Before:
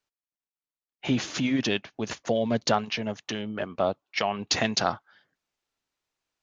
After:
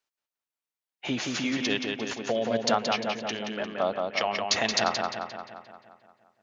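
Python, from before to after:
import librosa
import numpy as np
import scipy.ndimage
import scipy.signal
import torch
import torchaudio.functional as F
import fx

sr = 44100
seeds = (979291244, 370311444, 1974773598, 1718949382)

p1 = fx.low_shelf(x, sr, hz=240.0, db=-11.5)
y = p1 + fx.echo_filtered(p1, sr, ms=175, feedback_pct=59, hz=4700.0, wet_db=-3.5, dry=0)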